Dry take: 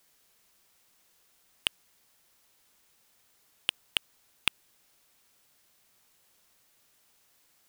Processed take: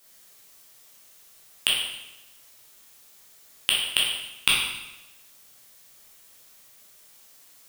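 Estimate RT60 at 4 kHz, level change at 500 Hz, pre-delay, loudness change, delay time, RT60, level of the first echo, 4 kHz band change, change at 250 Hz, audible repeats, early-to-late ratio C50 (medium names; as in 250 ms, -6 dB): 0.90 s, +9.0 dB, 6 ms, +9.0 dB, no echo, 0.95 s, no echo, +10.5 dB, +7.5 dB, no echo, 1.0 dB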